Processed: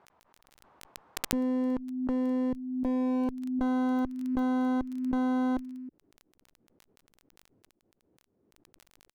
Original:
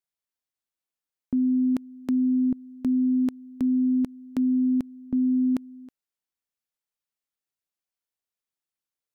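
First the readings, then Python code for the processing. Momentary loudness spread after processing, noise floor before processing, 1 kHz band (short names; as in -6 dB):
7 LU, under -85 dBFS, n/a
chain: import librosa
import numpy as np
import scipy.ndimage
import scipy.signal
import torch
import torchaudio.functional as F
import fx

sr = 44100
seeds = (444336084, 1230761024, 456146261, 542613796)

y = scipy.signal.sosfilt(scipy.signal.butter(4, 64.0, 'highpass', fs=sr, output='sos'), x)
y = fx.filter_sweep_lowpass(y, sr, from_hz=980.0, to_hz=330.0, start_s=2.48, end_s=3.63, q=2.1)
y = fx.dmg_crackle(y, sr, seeds[0], per_s=19.0, level_db=-36.0)
y = fx.clip_asym(y, sr, top_db=-35.5, bottom_db=-19.0)
y = fx.pre_swell(y, sr, db_per_s=44.0)
y = F.gain(torch.from_numpy(y), -2.5).numpy()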